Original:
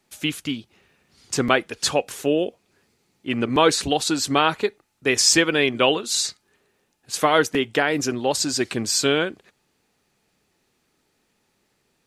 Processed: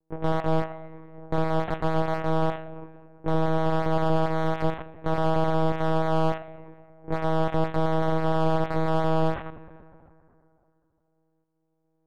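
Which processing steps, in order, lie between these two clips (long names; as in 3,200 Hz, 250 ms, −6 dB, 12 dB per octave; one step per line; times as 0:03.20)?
samples sorted by size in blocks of 128 samples
noise gate with hold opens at −54 dBFS
low-pass that shuts in the quiet parts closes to 350 Hz, open at −19 dBFS
low-shelf EQ 70 Hz +8 dB
reversed playback
downward compressor 6 to 1, threshold −30 dBFS, peak gain reduction 17.5 dB
reversed playback
shaped tremolo saw up 1.4 Hz, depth 65%
mid-hump overdrive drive 35 dB, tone 1,900 Hz, clips at −16.5 dBFS
feedback delay network reverb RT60 2.7 s, high-frequency decay 0.45×, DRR 11 dB
one-pitch LPC vocoder at 8 kHz 160 Hz
slew-rate limiting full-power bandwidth 70 Hz
level +4 dB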